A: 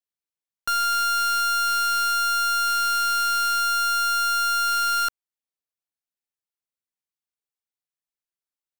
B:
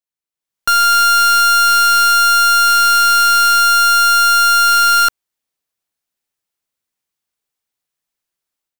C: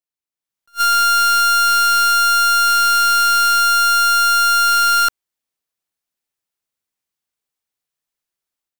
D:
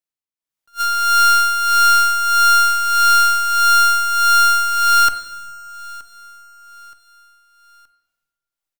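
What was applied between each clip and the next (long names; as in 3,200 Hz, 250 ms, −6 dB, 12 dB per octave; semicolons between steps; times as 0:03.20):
automatic gain control gain up to 11.5 dB
level that may rise only so fast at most 480 dB per second; level −3 dB
amplitude tremolo 1.6 Hz, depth 60%; repeating echo 923 ms, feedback 40%, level −21.5 dB; convolution reverb RT60 1.2 s, pre-delay 6 ms, DRR 8 dB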